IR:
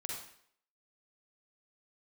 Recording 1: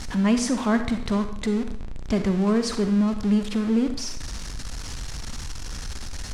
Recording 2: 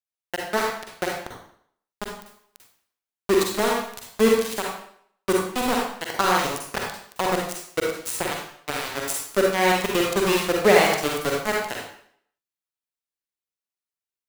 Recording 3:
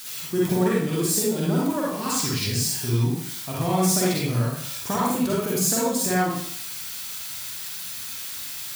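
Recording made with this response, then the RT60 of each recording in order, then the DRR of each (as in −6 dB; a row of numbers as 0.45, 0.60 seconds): 2; 0.65, 0.65, 0.65 seconds; 8.0, −2.0, −6.0 decibels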